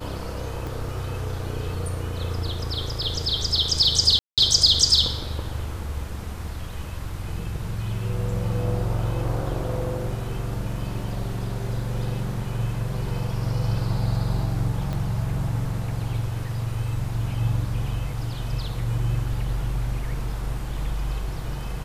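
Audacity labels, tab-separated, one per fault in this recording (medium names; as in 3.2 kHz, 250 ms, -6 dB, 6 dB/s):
0.670000	0.670000	pop
4.190000	4.380000	dropout 187 ms
14.930000	14.930000	pop -18 dBFS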